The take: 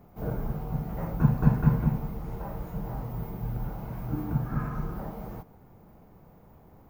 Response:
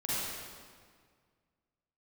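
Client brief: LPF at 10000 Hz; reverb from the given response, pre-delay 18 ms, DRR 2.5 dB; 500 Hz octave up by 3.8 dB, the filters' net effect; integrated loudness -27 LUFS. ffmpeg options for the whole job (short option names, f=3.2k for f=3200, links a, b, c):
-filter_complex "[0:a]lowpass=10k,equalizer=f=500:t=o:g=4.5,asplit=2[a][b];[1:a]atrim=start_sample=2205,adelay=18[c];[b][c]afir=irnorm=-1:irlink=0,volume=-9dB[d];[a][d]amix=inputs=2:normalize=0"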